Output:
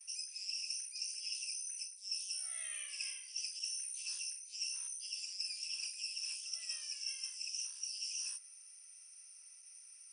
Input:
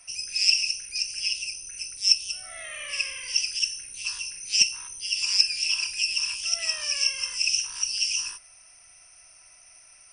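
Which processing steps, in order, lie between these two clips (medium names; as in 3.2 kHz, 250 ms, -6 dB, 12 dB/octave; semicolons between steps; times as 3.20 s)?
gain riding 2 s; differentiator; reverse; compression 20:1, threshold -34 dBFS, peak gain reduction 23.5 dB; reverse; gate with hold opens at -43 dBFS; trim -4 dB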